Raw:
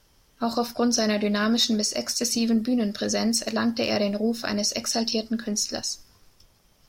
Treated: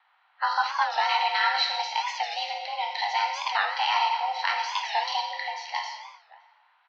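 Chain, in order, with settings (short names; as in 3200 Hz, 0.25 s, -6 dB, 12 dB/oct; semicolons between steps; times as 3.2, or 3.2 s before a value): per-bin compression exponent 0.6; spectral noise reduction 17 dB; mistuned SSB +300 Hz 520–3600 Hz; 3.35–4.64 crackle 29/s -52 dBFS; outdoor echo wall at 99 m, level -20 dB; non-linear reverb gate 0.43 s falling, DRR 2 dB; low-pass opened by the level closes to 2500 Hz, open at -24 dBFS; record warp 45 rpm, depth 160 cents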